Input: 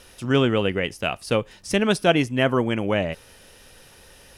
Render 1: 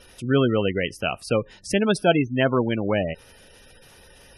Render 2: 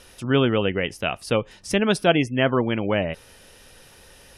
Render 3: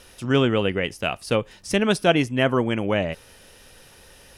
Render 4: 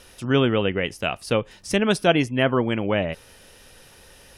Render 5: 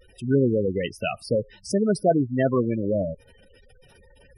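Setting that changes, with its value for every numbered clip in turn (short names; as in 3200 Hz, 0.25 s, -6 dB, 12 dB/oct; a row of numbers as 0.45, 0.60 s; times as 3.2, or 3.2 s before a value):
spectral gate, under each frame's peak: -20, -35, -60, -45, -10 dB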